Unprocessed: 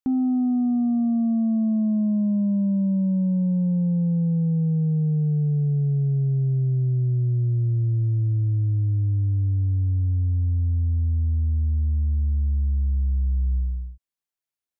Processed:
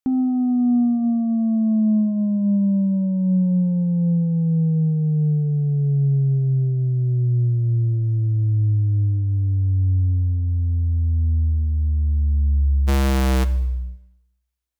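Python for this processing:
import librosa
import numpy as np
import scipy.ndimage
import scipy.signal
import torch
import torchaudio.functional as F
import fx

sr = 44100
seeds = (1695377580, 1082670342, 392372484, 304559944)

y = fx.halfwave_hold(x, sr, at=(12.87, 13.43), fade=0.02)
y = fx.rev_schroeder(y, sr, rt60_s=0.9, comb_ms=29, drr_db=14.5)
y = F.gain(torch.from_numpy(y), 2.5).numpy()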